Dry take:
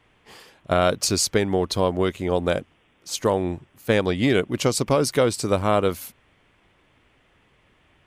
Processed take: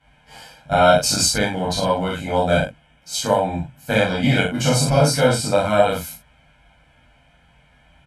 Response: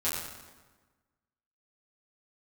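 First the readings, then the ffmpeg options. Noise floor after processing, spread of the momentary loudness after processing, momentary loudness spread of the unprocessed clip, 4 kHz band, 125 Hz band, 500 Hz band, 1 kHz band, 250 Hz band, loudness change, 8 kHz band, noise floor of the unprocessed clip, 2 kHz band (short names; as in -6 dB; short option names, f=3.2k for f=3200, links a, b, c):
-56 dBFS, 10 LU, 7 LU, +5.5 dB, +5.5 dB, +3.0 dB, +6.5 dB, +2.0 dB, +3.5 dB, +4.5 dB, -62 dBFS, +6.5 dB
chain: -filter_complex "[0:a]aecho=1:1:1.3:0.9[a];[1:a]atrim=start_sample=2205,atrim=end_sample=3528,asetrate=27342,aresample=44100[b];[a][b]afir=irnorm=-1:irlink=0,volume=-6.5dB"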